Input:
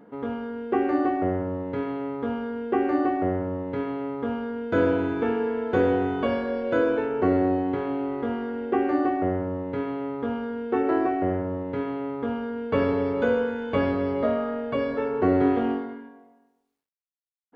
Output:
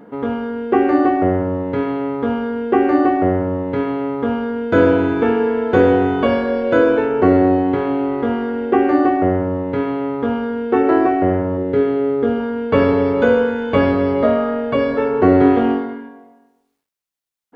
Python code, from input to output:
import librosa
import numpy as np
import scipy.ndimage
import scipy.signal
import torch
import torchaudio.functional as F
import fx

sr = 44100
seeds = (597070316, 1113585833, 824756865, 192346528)

y = fx.graphic_eq_31(x, sr, hz=(400, 1000, 2500), db=(9, -11, -4), at=(11.57, 12.4))
y = F.gain(torch.from_numpy(y), 9.0).numpy()